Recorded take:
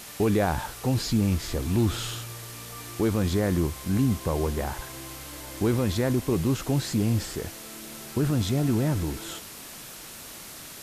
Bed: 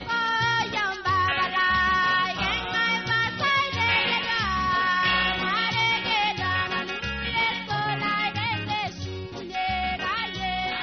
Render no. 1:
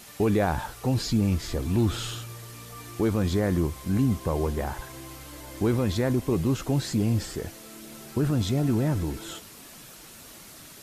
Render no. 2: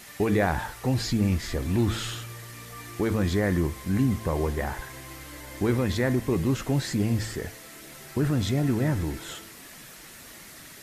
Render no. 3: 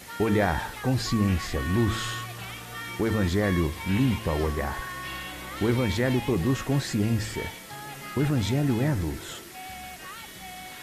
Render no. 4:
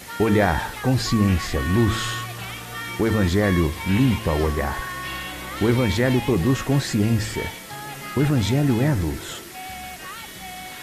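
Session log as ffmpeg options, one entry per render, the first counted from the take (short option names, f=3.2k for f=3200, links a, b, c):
-af "afftdn=nr=6:nf=-43"
-af "equalizer=f=1.9k:t=o:w=0.5:g=8,bandreject=f=110.5:t=h:w=4,bandreject=f=221:t=h:w=4,bandreject=f=331.5:t=h:w=4,bandreject=f=442:t=h:w=4,bandreject=f=552.5:t=h:w=4,bandreject=f=663:t=h:w=4,bandreject=f=773.5:t=h:w=4,bandreject=f=884:t=h:w=4,bandreject=f=994.5:t=h:w=4,bandreject=f=1.105k:t=h:w=4,bandreject=f=1.2155k:t=h:w=4,bandreject=f=1.326k:t=h:w=4,bandreject=f=1.4365k:t=h:w=4,bandreject=f=1.547k:t=h:w=4,bandreject=f=1.6575k:t=h:w=4,bandreject=f=1.768k:t=h:w=4,bandreject=f=1.8785k:t=h:w=4,bandreject=f=1.989k:t=h:w=4,bandreject=f=2.0995k:t=h:w=4,bandreject=f=2.21k:t=h:w=4,bandreject=f=2.3205k:t=h:w=4,bandreject=f=2.431k:t=h:w=4,bandreject=f=2.5415k:t=h:w=4,bandreject=f=2.652k:t=h:w=4,bandreject=f=2.7625k:t=h:w=4,bandreject=f=2.873k:t=h:w=4,bandreject=f=2.9835k:t=h:w=4,bandreject=f=3.094k:t=h:w=4,bandreject=f=3.2045k:t=h:w=4,bandreject=f=3.315k:t=h:w=4"
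-filter_complex "[1:a]volume=-14.5dB[a];[0:a][a]amix=inputs=2:normalize=0"
-af "volume=5dB"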